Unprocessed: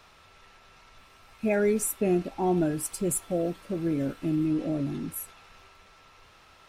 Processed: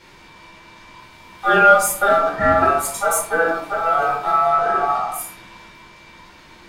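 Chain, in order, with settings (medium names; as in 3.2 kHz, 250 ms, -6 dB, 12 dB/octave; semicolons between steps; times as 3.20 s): ring modulator 1 kHz; Chebyshev shaper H 4 -29 dB, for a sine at -14.5 dBFS; simulated room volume 460 m³, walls furnished, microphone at 4.6 m; trim +5.5 dB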